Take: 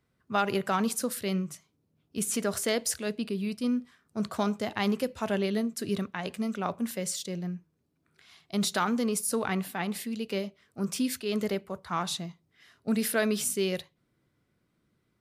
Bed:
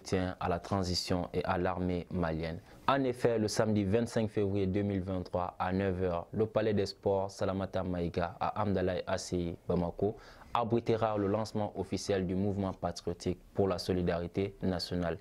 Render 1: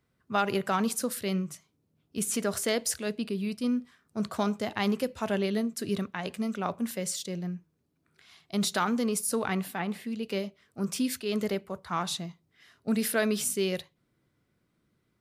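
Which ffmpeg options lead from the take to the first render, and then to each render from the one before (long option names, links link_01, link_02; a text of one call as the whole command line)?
ffmpeg -i in.wav -filter_complex "[0:a]asettb=1/sr,asplit=3[link_01][link_02][link_03];[link_01]atrim=end=9.794[link_04];[link_02]atrim=start=9.79:end=10.23,asetpts=PTS-STARTPTS,afade=type=in:duration=0.004:curve=qsin,afade=type=out:start_time=0.436:duration=0.004:curve=qsin,acrossover=split=2900[link_05][link_06];[link_06]acompressor=threshold=-51dB:ratio=4:attack=1:release=60[link_07];[link_05][link_07]amix=inputs=2:normalize=0[link_08];[link_03]atrim=start=10.226[link_09];[link_04][link_08]acrossfade=duration=0.004:curve1=hsin:curve2=qsin[link_10];[link_10][link_09]acrossfade=duration=0.004:curve1=qsin:curve2=hsin" out.wav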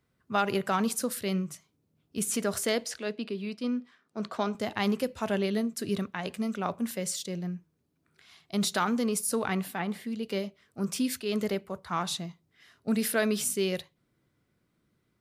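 ffmpeg -i in.wav -filter_complex "[0:a]asettb=1/sr,asplit=3[link_01][link_02][link_03];[link_01]atrim=end=2.844[link_04];[link_02]atrim=start=2.84:end=4.55,asetpts=PTS-STARTPTS,afade=type=in:duration=0.004:curve=qsin,afade=type=out:start_time=1.706:duration=0.004:curve=qsin,acrossover=split=200 5700:gain=0.158 1 0.2[link_05][link_06][link_07];[link_05][link_06][link_07]amix=inputs=3:normalize=0[link_08];[link_03]atrim=start=4.546[link_09];[link_04][link_08]acrossfade=duration=0.004:curve1=hsin:curve2=qsin[link_10];[link_10][link_09]acrossfade=duration=0.004:curve1=qsin:curve2=hsin,asettb=1/sr,asplit=3[link_11][link_12][link_13];[link_11]atrim=end=9.834[link_14];[link_12]atrim=start=9.83:end=10.42,asetpts=PTS-STARTPTS,afade=type=in:duration=0.004:curve=qsin,afade=type=out:start_time=0.586:duration=0.004:curve=qsin,bandreject=frequency=2600:width=12[link_15];[link_13]atrim=start=10.416[link_16];[link_14][link_15]acrossfade=duration=0.004:curve1=hsin:curve2=qsin[link_17];[link_17][link_16]acrossfade=duration=0.004:curve1=qsin:curve2=hsin" out.wav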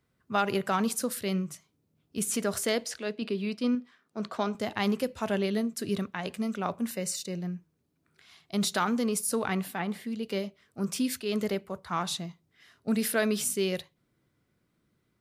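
ffmpeg -i in.wav -filter_complex "[0:a]asettb=1/sr,asplit=3[link_01][link_02][link_03];[link_01]atrim=end=6.904[link_04];[link_02]atrim=start=6.9:end=7.39,asetpts=PTS-STARTPTS,afade=type=in:duration=0.004:curve=qsin,afade=type=out:start_time=0.486:duration=0.004:curve=qsin,asuperstop=centerf=3300:order=12:qfactor=7[link_05];[link_03]atrim=start=7.386[link_06];[link_04][link_05]acrossfade=duration=0.004:curve1=hsin:curve2=qsin[link_07];[link_07][link_06]acrossfade=duration=0.004:curve1=qsin:curve2=hsin,asplit=3[link_08][link_09][link_10];[link_08]atrim=end=3.222[link_11];[link_09]atrim=start=3.218:end=3.752,asetpts=PTS-STARTPTS,volume=3.5dB[link_12];[link_10]atrim=start=3.748[link_13];[link_11][link_12]acrossfade=duration=0.004:curve1=hsin:curve2=hsin[link_14];[link_14][link_13]acrossfade=duration=0.004:curve1=hsin:curve2=hsin" out.wav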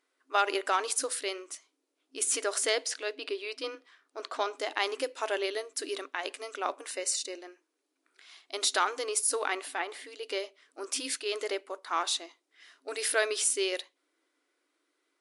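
ffmpeg -i in.wav -af "afftfilt=real='re*between(b*sr/4096,260,11000)':imag='im*between(b*sr/4096,260,11000)':win_size=4096:overlap=0.75,tiltshelf=frequency=760:gain=-3.5" out.wav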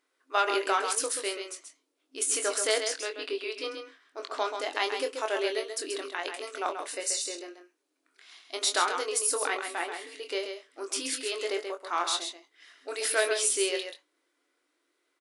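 ffmpeg -i in.wav -filter_complex "[0:a]asplit=2[link_01][link_02];[link_02]adelay=23,volume=-7dB[link_03];[link_01][link_03]amix=inputs=2:normalize=0,aecho=1:1:133:0.447" out.wav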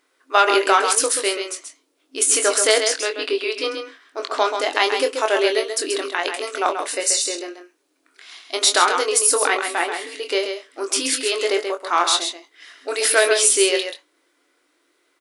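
ffmpeg -i in.wav -af "volume=11dB,alimiter=limit=-2dB:level=0:latency=1" out.wav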